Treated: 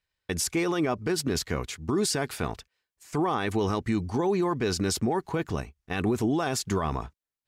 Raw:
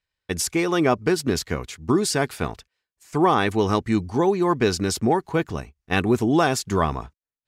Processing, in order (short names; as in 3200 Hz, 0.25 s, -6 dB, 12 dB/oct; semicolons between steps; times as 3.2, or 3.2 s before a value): limiter -18 dBFS, peak gain reduction 10.5 dB